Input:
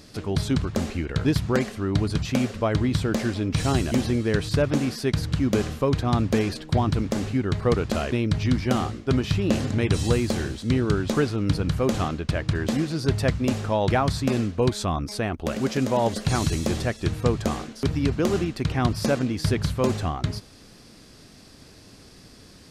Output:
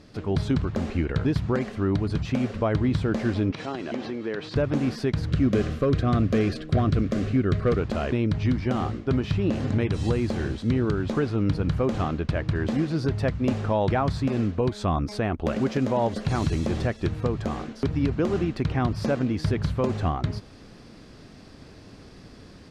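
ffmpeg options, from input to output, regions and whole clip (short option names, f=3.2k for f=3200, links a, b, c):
-filter_complex "[0:a]asettb=1/sr,asplit=3[a][b][c];[a]atrim=end=3.514[d];[b]atrim=start=3.51:end=4.56,asetpts=PTS-STARTPTS,afade=t=in:d=0.004:c=qsin,afade=t=out:st=1.046:d=0.004:c=qsin,acompressor=threshold=-25dB:ratio=6:attack=3.2:release=140:knee=1:detection=peak,highpass=300,lowpass=4.9k[e];[c]atrim=start=4.556[f];[d][e]acrossfade=d=0.004:c1=hsin:c2=qsin[g];[g][f]acrossfade=d=0.004:c1=qsin:c2=hsin,asettb=1/sr,asplit=3[h][i][j];[h]atrim=end=5.304[k];[i]atrim=start=5.3:end=7.8,asetpts=PTS-STARTPTS,afade=t=in:d=0.004:c=qsin,afade=t=out:st=2.496:d=0.004:c=qsin,volume=16.5dB,asoftclip=hard,volume=-16.5dB,asuperstop=centerf=890:order=4:qfactor=2.8[l];[j]atrim=start=7.796[m];[k][l]acrossfade=d=0.004:c1=hsin:c2=qsin[n];[n][m]acrossfade=d=0.004:c1=qsin:c2=hsin,aemphasis=mode=reproduction:type=75fm,dynaudnorm=f=210:g=3:m=4.5dB,alimiter=limit=-12dB:level=0:latency=1:release=230,volume=-2dB"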